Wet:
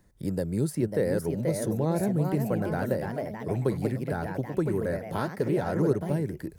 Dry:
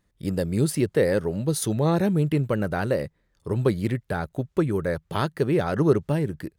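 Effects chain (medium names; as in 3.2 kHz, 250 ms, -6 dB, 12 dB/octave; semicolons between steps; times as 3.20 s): reverse; upward compressor, threshold -34 dBFS; reverse; peaking EQ 3 kHz -9.5 dB 1.1 oct; ever faster or slower copies 588 ms, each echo +2 st, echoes 3, each echo -6 dB; band-stop 1.2 kHz, Q 8.5; three bands compressed up and down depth 40%; trim -5 dB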